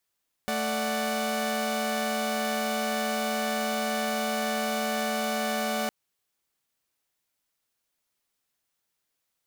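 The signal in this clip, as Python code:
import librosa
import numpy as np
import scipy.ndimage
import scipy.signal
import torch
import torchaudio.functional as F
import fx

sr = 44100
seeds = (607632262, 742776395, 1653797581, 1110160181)

y = fx.chord(sr, length_s=5.41, notes=(57, 74, 78), wave='saw', level_db=-28.5)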